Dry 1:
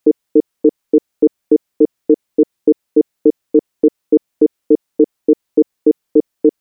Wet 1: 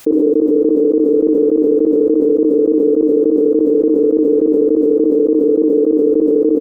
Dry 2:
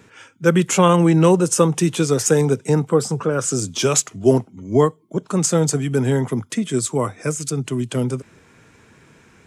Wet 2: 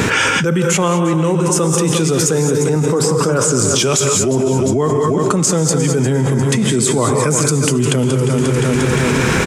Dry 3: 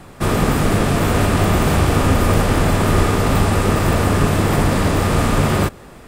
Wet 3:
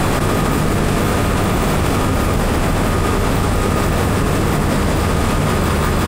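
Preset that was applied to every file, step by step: feedback echo 0.352 s, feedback 40%, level -13 dB; non-linear reverb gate 0.24 s rising, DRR 6 dB; fast leveller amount 100%; gain -5 dB

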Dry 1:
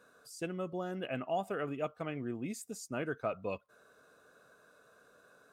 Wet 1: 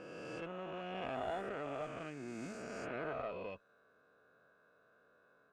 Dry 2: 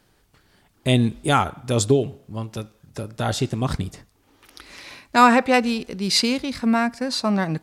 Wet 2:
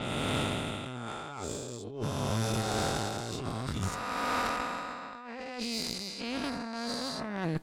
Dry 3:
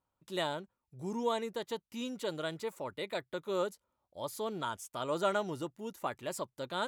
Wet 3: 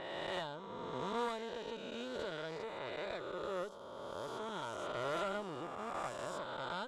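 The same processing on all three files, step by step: spectral swells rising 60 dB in 2.90 s; negative-ratio compressor -26 dBFS, ratio -1; low-pass opened by the level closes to 2600 Hz, open at -20.5 dBFS; tube stage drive 18 dB, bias 0.75; gain -5.5 dB

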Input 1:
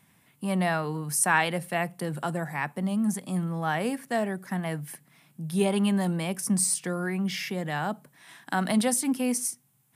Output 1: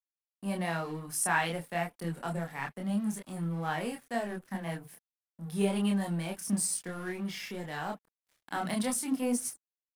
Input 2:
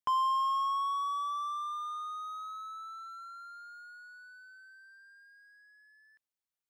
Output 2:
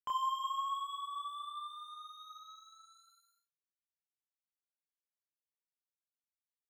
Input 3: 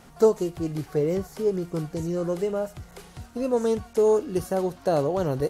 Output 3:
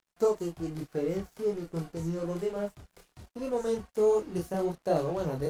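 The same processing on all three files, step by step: crossover distortion -43.5 dBFS; chorus voices 6, 0.88 Hz, delay 27 ms, depth 3.5 ms; gain -2 dB

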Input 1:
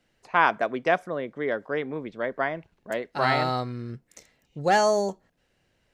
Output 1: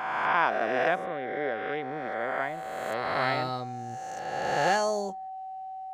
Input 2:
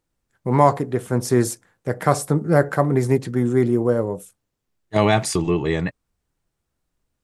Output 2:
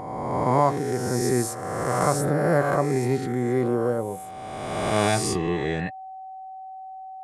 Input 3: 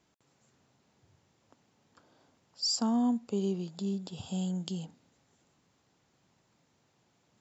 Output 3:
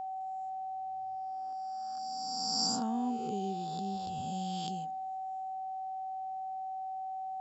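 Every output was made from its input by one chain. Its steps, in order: spectral swells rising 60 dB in 1.73 s; whine 760 Hz -29 dBFS; gain -7 dB

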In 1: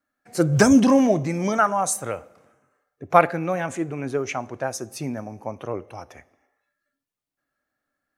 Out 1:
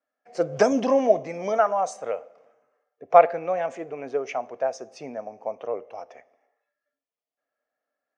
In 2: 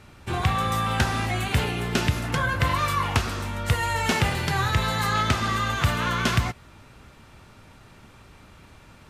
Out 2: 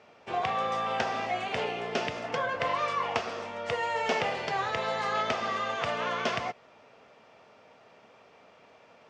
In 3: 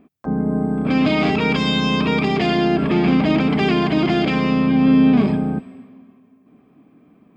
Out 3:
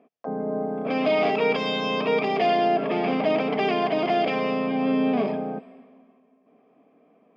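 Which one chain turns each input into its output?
speaker cabinet 310–5500 Hz, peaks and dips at 330 Hz -6 dB, 470 Hz +8 dB, 670 Hz +9 dB, 1500 Hz -4 dB, 4000 Hz -7 dB; gain -4.5 dB

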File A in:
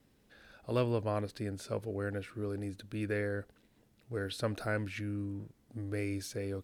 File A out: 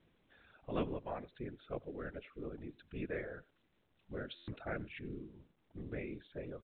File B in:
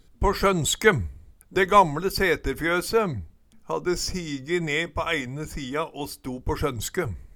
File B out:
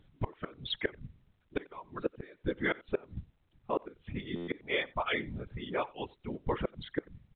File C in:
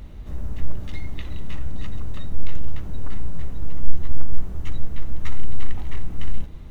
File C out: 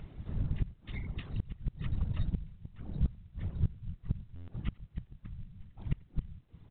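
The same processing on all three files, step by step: reverb removal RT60 1.9 s; dynamic EQ 390 Hz, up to +6 dB, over -39 dBFS, Q 5; whisperiser; flipped gate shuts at -13 dBFS, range -27 dB; speakerphone echo 90 ms, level -23 dB; stuck buffer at 4.35, samples 512, times 10; gain -5.5 dB; µ-law 64 kbps 8000 Hz

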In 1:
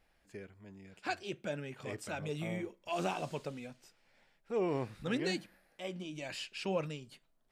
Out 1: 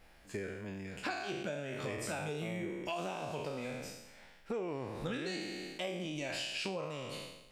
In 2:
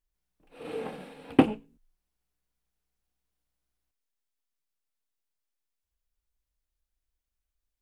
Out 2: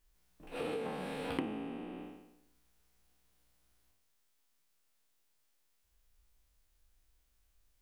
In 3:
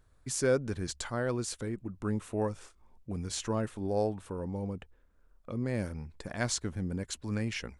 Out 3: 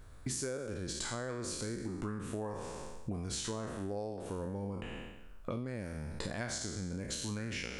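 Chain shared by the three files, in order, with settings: spectral trails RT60 0.89 s; compressor 16:1, threshold -44 dBFS; gain +9 dB

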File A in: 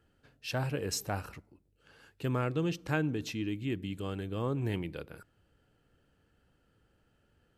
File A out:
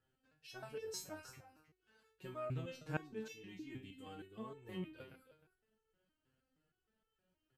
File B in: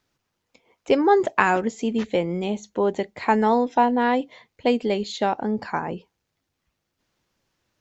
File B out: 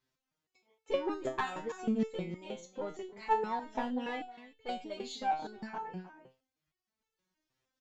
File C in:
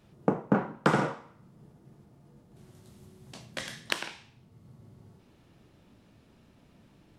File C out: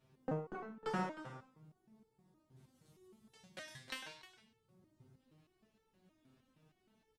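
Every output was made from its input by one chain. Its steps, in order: one diode to ground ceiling -12.5 dBFS; echo 0.31 s -13.5 dB; stepped resonator 6.4 Hz 130–440 Hz; gain +1 dB

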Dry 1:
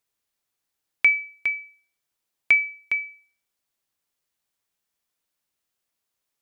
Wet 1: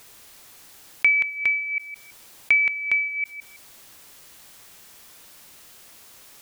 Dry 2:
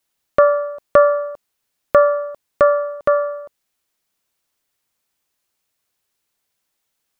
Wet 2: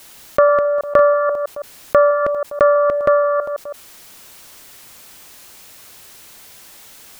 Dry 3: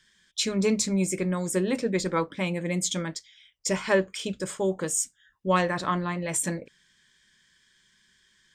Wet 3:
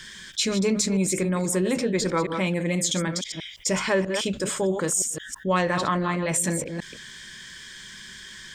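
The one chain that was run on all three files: reverse delay 0.162 s, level -11 dB; fast leveller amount 50%; gain -1.5 dB

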